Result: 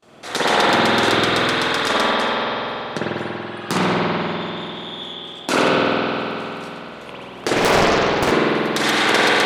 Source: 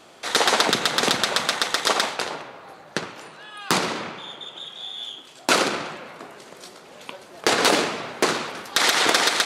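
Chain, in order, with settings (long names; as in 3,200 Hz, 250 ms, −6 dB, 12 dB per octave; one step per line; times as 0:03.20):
noise gate with hold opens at −41 dBFS
low-shelf EQ 350 Hz +9 dB
spring reverb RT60 3.3 s, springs 48 ms, chirp 55 ms, DRR −9 dB
0:07.56–0:08.32: highs frequency-modulated by the lows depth 0.96 ms
level −5 dB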